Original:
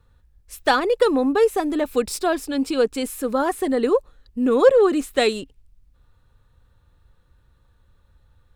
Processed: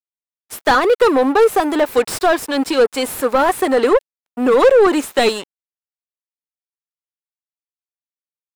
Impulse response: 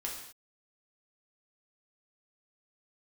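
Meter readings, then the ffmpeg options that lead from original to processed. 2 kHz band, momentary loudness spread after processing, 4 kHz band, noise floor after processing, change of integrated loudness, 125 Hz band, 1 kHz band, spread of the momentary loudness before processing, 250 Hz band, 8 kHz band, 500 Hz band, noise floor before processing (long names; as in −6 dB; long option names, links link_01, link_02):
+7.0 dB, 8 LU, +5.5 dB, below −85 dBFS, +5.0 dB, can't be measured, +7.5 dB, 9 LU, +3.0 dB, +5.5 dB, +5.0 dB, −59 dBFS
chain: -filter_complex "[0:a]aemphasis=mode=production:type=bsi,aeval=exprs='sgn(val(0))*max(abs(val(0))-0.015,0)':channel_layout=same,asplit=2[link_01][link_02];[link_02]highpass=frequency=720:poles=1,volume=23dB,asoftclip=type=tanh:threshold=-3.5dB[link_03];[link_01][link_03]amix=inputs=2:normalize=0,lowpass=frequency=1200:poles=1,volume=-6dB,volume=1.5dB"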